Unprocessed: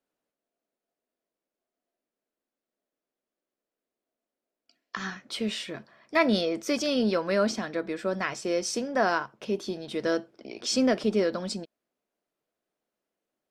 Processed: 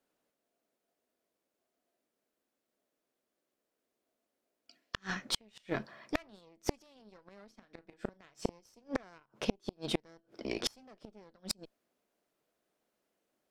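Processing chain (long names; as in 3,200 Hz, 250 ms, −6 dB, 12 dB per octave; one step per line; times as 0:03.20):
harmonic generator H 2 −7 dB, 3 −23 dB, 4 −26 dB, 6 −18 dB, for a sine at −10 dBFS
gate with flip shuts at −20 dBFS, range −38 dB
0:07.56–0:08.60: double-tracking delay 36 ms −13 dB
level +6 dB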